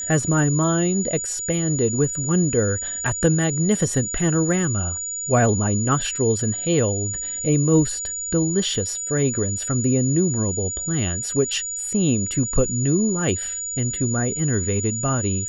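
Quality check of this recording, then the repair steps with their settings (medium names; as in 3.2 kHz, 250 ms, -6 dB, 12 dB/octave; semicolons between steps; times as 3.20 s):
whine 6.9 kHz -26 dBFS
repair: band-stop 6.9 kHz, Q 30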